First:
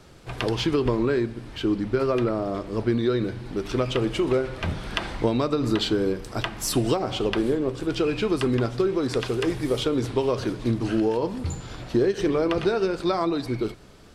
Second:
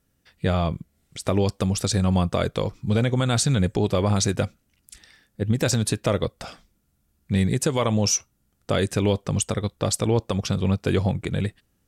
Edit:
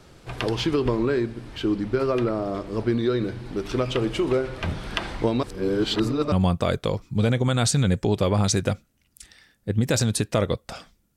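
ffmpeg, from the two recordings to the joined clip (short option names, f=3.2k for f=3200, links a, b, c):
-filter_complex "[0:a]apad=whole_dur=11.16,atrim=end=11.16,asplit=2[a][b];[a]atrim=end=5.432[c];[b]atrim=start=5.428:end=6.322,asetpts=PTS-STARTPTS,areverse[d];[1:a]atrim=start=2.038:end=6.88[e];[c][d]acrossfade=d=0.004:c1=hsin:c2=hsin[f];[f][e]acrossfade=d=0.004:c1=hsin:c2=hsin"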